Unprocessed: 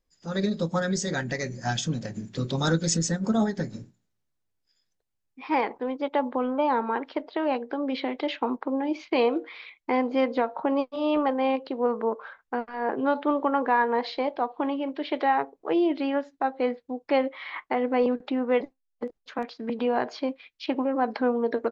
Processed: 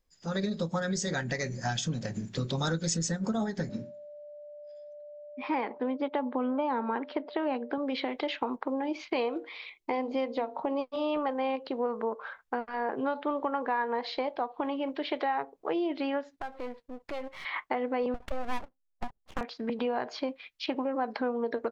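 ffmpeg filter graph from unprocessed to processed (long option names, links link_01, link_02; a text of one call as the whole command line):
ffmpeg -i in.wav -filter_complex "[0:a]asettb=1/sr,asplit=3[link_01][link_02][link_03];[link_01]atrim=end=3.694[link_04];[link_02]atrim=start=3.69:end=7.78,asetpts=PTS-STARTPTS,afade=type=in:duration=0.004:curve=qsin,afade=type=out:start_time=4.086:duration=0.004:curve=qsin,equalizer=frequency=250:width_type=o:width=0.74:gain=6.5,aeval=exprs='val(0)+0.00562*sin(2*PI*590*n/s)':channel_layout=same,highpass=130,lowpass=4300[link_05];[link_03]atrim=start=7.776[link_06];[link_04][link_05]acrossfade=duration=0.004:curve1=hsin:curve2=qsin[link_07];[link_07][link_06]acrossfade=duration=0.004:curve1=qsin:curve2=hsin,asettb=1/sr,asplit=3[link_08][link_09][link_10];[link_08]atrim=end=9.454[link_11];[link_09]atrim=start=9.45:end=10.81,asetpts=PTS-STARTPTS,afade=type=in:duration=0.004:curve=qsin,afade=type=out:start_time=1.356:duration=0.004:curve=qsin,equalizer=frequency=1500:width_type=o:width=0.66:gain=-9.5,bandreject=frequency=50:width_type=h:width=6,bandreject=frequency=100:width_type=h:width=6,bandreject=frequency=150:width_type=h:width=6,bandreject=frequency=200:width_type=h:width=6,bandreject=frequency=250:width_type=h:width=6,bandreject=frequency=300:width_type=h:width=6,bandreject=frequency=350:width_type=h:width=6,bandreject=frequency=400:width_type=h:width=6,bandreject=frequency=450:width_type=h:width=6[link_12];[link_10]atrim=start=10.806[link_13];[link_11][link_12]acrossfade=duration=0.004:curve1=hsin:curve2=qsin[link_14];[link_14][link_13]acrossfade=duration=0.004:curve1=qsin:curve2=hsin,asettb=1/sr,asplit=3[link_15][link_16][link_17];[link_15]atrim=end=16.364[link_18];[link_16]atrim=start=16.36:end=17.45,asetpts=PTS-STARTPTS,afade=type=in:duration=0.004:curve=qsin,afade=type=out:start_time=1.086:duration=0.004:curve=qsin,aeval=exprs='if(lt(val(0),0),0.251*val(0),val(0))':channel_layout=same,acompressor=threshold=-41dB:ratio=2:attack=3.2:release=140:knee=1:detection=peak[link_19];[link_17]atrim=start=17.446[link_20];[link_18][link_19]acrossfade=duration=0.004:curve1=hsin:curve2=qsin[link_21];[link_21][link_20]acrossfade=duration=0.004:curve1=qsin:curve2=hsin,asettb=1/sr,asplit=3[link_22][link_23][link_24];[link_22]atrim=end=18.144[link_25];[link_23]atrim=start=18.14:end=19.41,asetpts=PTS-STARTPTS,afade=type=in:duration=0.004:curve=qsin,afade=type=out:start_time=1.266:duration=0.004:curve=qsin,highshelf=frequency=3300:gain=-7,adynamicsmooth=sensitivity=8:basefreq=870,aeval=exprs='abs(val(0))':channel_layout=same[link_26];[link_24]atrim=start=19.406[link_27];[link_25][link_26]acrossfade=duration=0.004:curve1=hsin:curve2=qsin[link_28];[link_28][link_27]acrossfade=duration=0.004:curve1=qsin:curve2=hsin,equalizer=frequency=300:width_type=o:width=0.94:gain=-3.5,acompressor=threshold=-31dB:ratio=3,volume=2dB" out.wav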